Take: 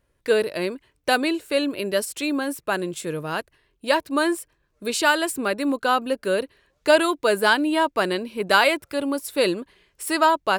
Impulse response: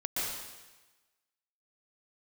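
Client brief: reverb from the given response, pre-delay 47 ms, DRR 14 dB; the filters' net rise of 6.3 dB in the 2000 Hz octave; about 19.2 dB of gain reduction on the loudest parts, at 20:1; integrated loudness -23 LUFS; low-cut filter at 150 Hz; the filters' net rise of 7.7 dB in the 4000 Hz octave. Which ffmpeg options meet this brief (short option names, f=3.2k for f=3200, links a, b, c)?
-filter_complex "[0:a]highpass=150,equalizer=f=2k:t=o:g=7.5,equalizer=f=4k:t=o:g=7,acompressor=threshold=-27dB:ratio=20,asplit=2[a][b];[1:a]atrim=start_sample=2205,adelay=47[c];[b][c]afir=irnorm=-1:irlink=0,volume=-20dB[d];[a][d]amix=inputs=2:normalize=0,volume=9dB"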